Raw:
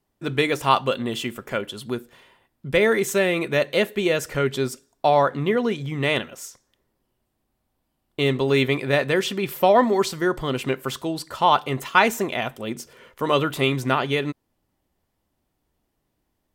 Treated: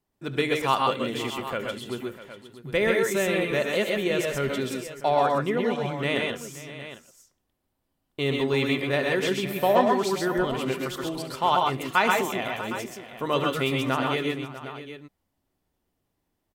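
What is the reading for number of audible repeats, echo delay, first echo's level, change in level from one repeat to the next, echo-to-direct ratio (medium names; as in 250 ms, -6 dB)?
5, 72 ms, -14.5 dB, no regular repeats, -1.0 dB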